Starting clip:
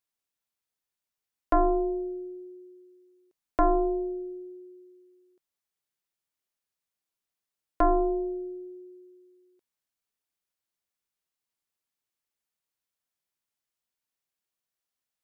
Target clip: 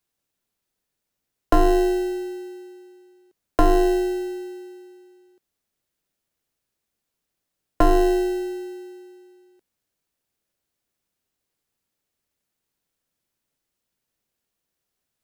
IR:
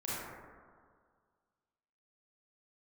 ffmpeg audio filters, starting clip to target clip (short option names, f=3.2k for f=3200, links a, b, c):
-filter_complex "[0:a]acrossover=split=310|3000[a][b][c];[b]acompressor=threshold=-24dB:ratio=6[d];[a][d][c]amix=inputs=3:normalize=0,asplit=2[e][f];[f]acrusher=samples=38:mix=1:aa=0.000001,volume=-9dB[g];[e][g]amix=inputs=2:normalize=0,volume=6.5dB"